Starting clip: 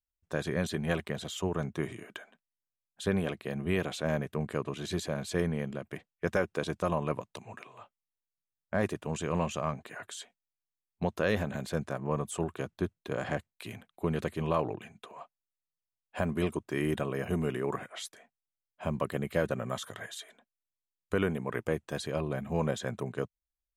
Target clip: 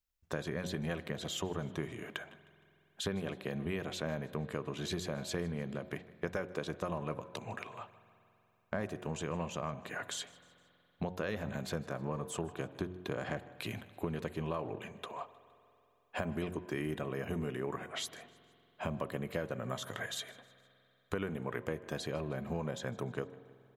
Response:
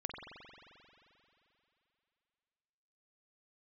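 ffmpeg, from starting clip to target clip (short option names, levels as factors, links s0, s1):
-filter_complex "[0:a]equalizer=f=9000:w=4.6:g=-8,bandreject=f=90.92:t=h:w=4,bandreject=f=181.84:t=h:w=4,bandreject=f=272.76:t=h:w=4,bandreject=f=363.68:t=h:w=4,bandreject=f=454.6:t=h:w=4,bandreject=f=545.52:t=h:w=4,bandreject=f=636.44:t=h:w=4,bandreject=f=727.36:t=h:w=4,bandreject=f=818.28:t=h:w=4,bandreject=f=909.2:t=h:w=4,bandreject=f=1000.12:t=h:w=4,acompressor=threshold=0.01:ratio=4,aecho=1:1:155|310|465:0.075|0.036|0.0173,asplit=2[s0][s1];[1:a]atrim=start_sample=2205,asetrate=41895,aresample=44100[s2];[s1][s2]afir=irnorm=-1:irlink=0,volume=0.2[s3];[s0][s3]amix=inputs=2:normalize=0,volume=1.5"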